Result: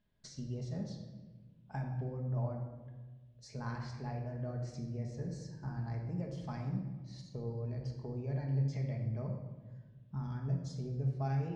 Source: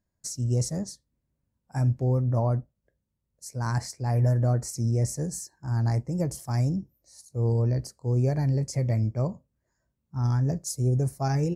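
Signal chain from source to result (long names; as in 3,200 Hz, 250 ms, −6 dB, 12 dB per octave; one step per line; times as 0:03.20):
downward compressor 6 to 1, threshold −40 dBFS, peak gain reduction 19 dB
transistor ladder low-pass 3,700 Hz, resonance 60%
convolution reverb RT60 1.3 s, pre-delay 5 ms, DRR 1 dB
level +10.5 dB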